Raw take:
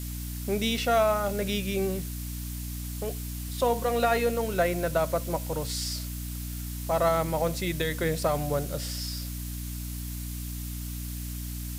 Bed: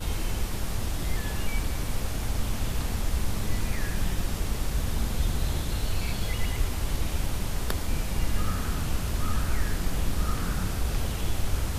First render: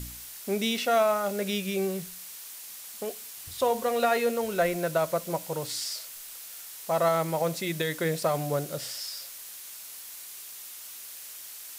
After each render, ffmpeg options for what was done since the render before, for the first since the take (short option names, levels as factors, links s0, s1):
-af "bandreject=f=60:t=h:w=4,bandreject=f=120:t=h:w=4,bandreject=f=180:t=h:w=4,bandreject=f=240:t=h:w=4,bandreject=f=300:t=h:w=4"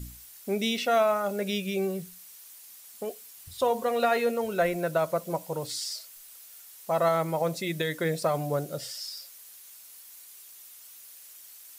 -af "afftdn=nr=9:nf=-43"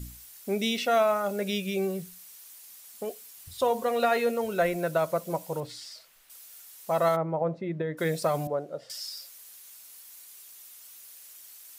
-filter_complex "[0:a]asettb=1/sr,asplit=3[s0][s1][s2];[s0]atrim=end=5.604[s3];[s1]atrim=start=5.6:end=6.3,asetpts=PTS-STARTPTS,afade=t=in:d=0.004:c=qsin,afade=t=out:st=0.696:d=0.004:c=qsin,bass=f=250:g=1,treble=f=4000:g=-13[s4];[s2]atrim=start=6.296[s5];[s3][s4]acrossfade=d=0.004:c1=hsin:c2=qsin[s6];[s6][s5]acrossfade=d=0.004:c1=qsin:c2=hsin,asplit=3[s7][s8][s9];[s7]afade=t=out:st=7.15:d=0.02[s10];[s8]lowpass=1100,afade=t=in:st=7.15:d=0.02,afade=t=out:st=7.97:d=0.02[s11];[s9]afade=t=in:st=7.97:d=0.02[s12];[s10][s11][s12]amix=inputs=3:normalize=0,asettb=1/sr,asplit=3[s13][s14][s15];[s13]atrim=end=8.474[s16];[s14]atrim=start=8.47:end=8.9,asetpts=PTS-STARTPTS,afade=t=in:d=0.004:c=qsin,afade=t=out:st=0.426:d=0.004:c=qsin,bandpass=f=630:t=q:w=0.84[s17];[s15]atrim=start=8.896[s18];[s16][s17]acrossfade=d=0.004:c1=hsin:c2=qsin[s19];[s19][s18]acrossfade=d=0.004:c1=qsin:c2=hsin"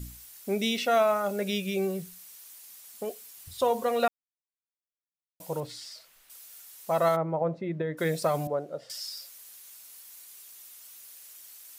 -filter_complex "[0:a]asplit=3[s0][s1][s2];[s0]atrim=end=4.08,asetpts=PTS-STARTPTS,afade=t=out:st=4.076:d=0.004:c=hsin[s3];[s1]atrim=start=4.08:end=5.4,asetpts=PTS-STARTPTS,volume=0[s4];[s2]atrim=start=5.4,asetpts=PTS-STARTPTS,afade=t=in:d=0.004:c=hsin[s5];[s3][s4][s5]concat=n=3:v=0:a=1"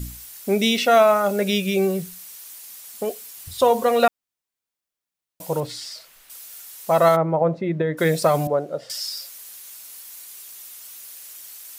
-af "volume=2.66"